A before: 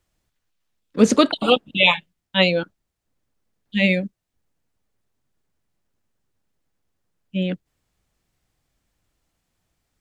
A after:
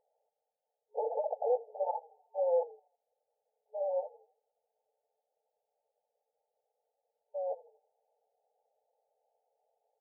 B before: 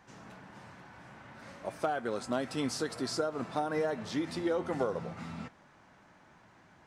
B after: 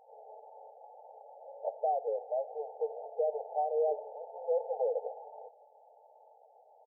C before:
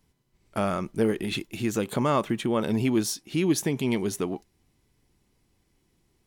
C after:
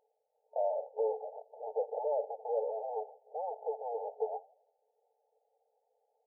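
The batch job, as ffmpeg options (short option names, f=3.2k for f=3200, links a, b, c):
-filter_complex "[0:a]aeval=exprs='(tanh(35.5*val(0)+0.35)-tanh(0.35))/35.5':c=same,asplit=5[a][b][c][d][e];[b]adelay=81,afreqshift=-36,volume=-21dB[f];[c]adelay=162,afreqshift=-72,volume=-27.2dB[g];[d]adelay=243,afreqshift=-108,volume=-33.4dB[h];[e]adelay=324,afreqshift=-144,volume=-39.6dB[i];[a][f][g][h][i]amix=inputs=5:normalize=0,afftfilt=real='re*between(b*sr/4096,430,900)':imag='im*between(b*sr/4096,430,900)':win_size=4096:overlap=0.75,volume=7dB"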